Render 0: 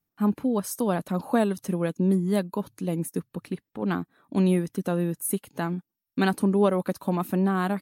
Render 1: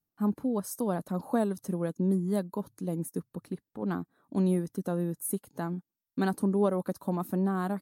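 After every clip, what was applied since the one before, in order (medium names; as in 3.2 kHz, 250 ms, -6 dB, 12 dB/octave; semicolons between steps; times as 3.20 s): peaking EQ 2.6 kHz -11 dB 1.1 oct; trim -4.5 dB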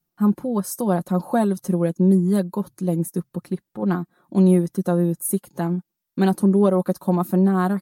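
comb 5.6 ms, depth 62%; trim +7 dB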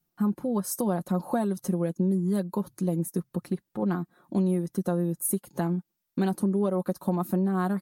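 compression 3:1, threshold -25 dBFS, peak gain reduction 10.5 dB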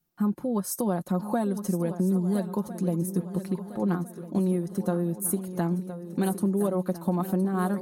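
shuffle delay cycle 1353 ms, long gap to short 3:1, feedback 40%, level -12 dB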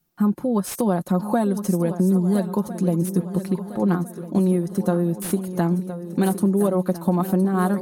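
slew-rate limiter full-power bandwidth 140 Hz; trim +6 dB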